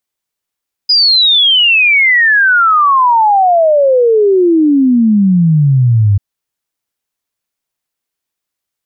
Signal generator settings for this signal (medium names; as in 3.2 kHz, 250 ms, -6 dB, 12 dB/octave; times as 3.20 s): log sweep 5 kHz -> 97 Hz 5.29 s -5.5 dBFS